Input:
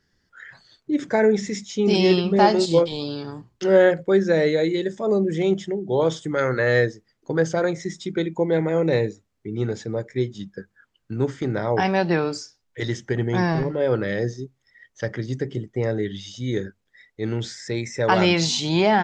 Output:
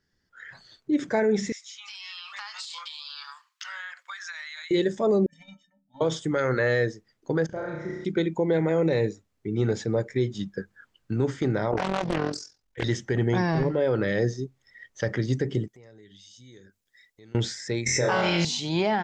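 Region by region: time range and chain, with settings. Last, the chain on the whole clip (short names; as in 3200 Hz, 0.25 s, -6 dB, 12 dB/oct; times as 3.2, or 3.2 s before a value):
1.52–4.71 elliptic high-pass 1100 Hz, stop band 60 dB + compressor 16:1, threshold -38 dBFS
5.26–6.01 elliptic band-stop 240–680 Hz + gate -29 dBFS, range -14 dB + metallic resonator 270 Hz, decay 0.27 s, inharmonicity 0.03
7.46–8.05 LPF 1900 Hz + level quantiser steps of 16 dB + flutter echo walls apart 5.6 m, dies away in 1.1 s
11.71–12.84 AM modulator 43 Hz, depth 60% + Doppler distortion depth 0.93 ms
15.68–17.35 pre-emphasis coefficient 0.8 + compressor 3:1, threshold -56 dBFS
17.86–18.45 flutter echo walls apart 4 m, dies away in 0.81 s + backwards sustainer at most 31 dB/s
whole clip: AGC; limiter -7.5 dBFS; gain -7 dB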